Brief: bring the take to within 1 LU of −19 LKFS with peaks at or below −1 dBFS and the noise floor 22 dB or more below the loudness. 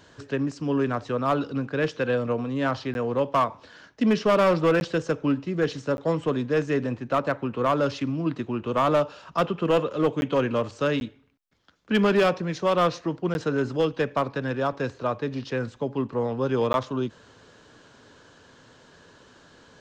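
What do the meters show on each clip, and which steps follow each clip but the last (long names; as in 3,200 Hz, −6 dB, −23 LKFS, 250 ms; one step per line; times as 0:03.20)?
share of clipped samples 1.1%; peaks flattened at −15.0 dBFS; number of dropouts 7; longest dropout 11 ms; integrated loudness −25.5 LKFS; sample peak −15.0 dBFS; target loudness −19.0 LKFS
→ clipped peaks rebuilt −15 dBFS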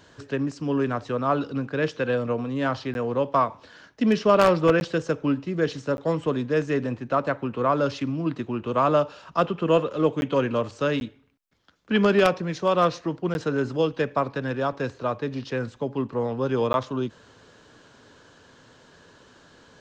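share of clipped samples 0.0%; number of dropouts 7; longest dropout 11 ms
→ repair the gap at 0:02.94/0:04.80/0:05.97/0:10.21/0:11.00/0:13.34/0:16.73, 11 ms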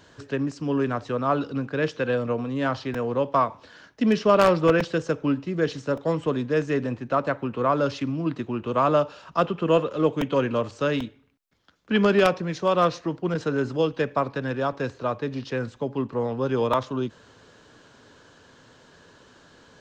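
number of dropouts 0; integrated loudness −25.0 LKFS; sample peak −6.0 dBFS; target loudness −19.0 LKFS
→ level +6 dB
brickwall limiter −1 dBFS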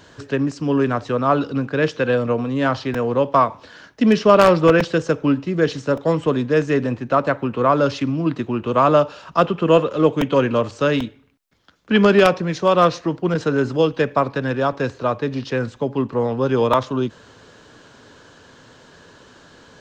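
integrated loudness −19.0 LKFS; sample peak −1.0 dBFS; background noise floor −49 dBFS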